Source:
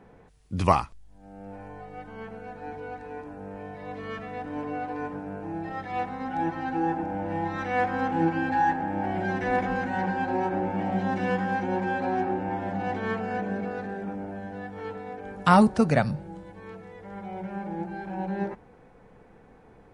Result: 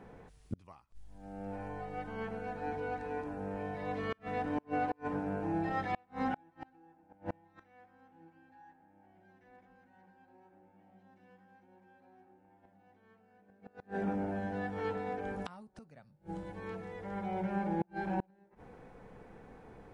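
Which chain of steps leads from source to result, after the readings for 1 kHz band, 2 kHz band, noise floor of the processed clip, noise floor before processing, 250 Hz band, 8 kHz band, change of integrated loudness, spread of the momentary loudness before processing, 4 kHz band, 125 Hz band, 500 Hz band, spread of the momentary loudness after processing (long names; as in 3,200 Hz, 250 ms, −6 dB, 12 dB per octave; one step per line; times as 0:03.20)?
−13.0 dB, −12.5 dB, −67 dBFS, −54 dBFS, −11.5 dB, can't be measured, −10.0 dB, 17 LU, −13.5 dB, −12.0 dB, −10.0 dB, 20 LU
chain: gate with flip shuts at −23 dBFS, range −35 dB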